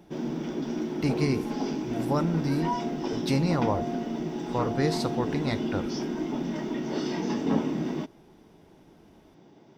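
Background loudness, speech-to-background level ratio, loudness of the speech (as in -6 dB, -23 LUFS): -31.0 LUFS, 1.0 dB, -30.0 LUFS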